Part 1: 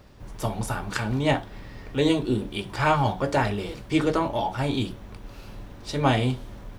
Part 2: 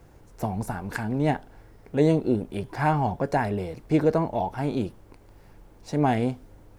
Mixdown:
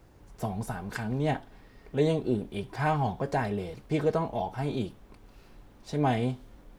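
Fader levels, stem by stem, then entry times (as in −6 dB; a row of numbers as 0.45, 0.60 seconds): −13.0, −5.0 decibels; 0.00, 0.00 seconds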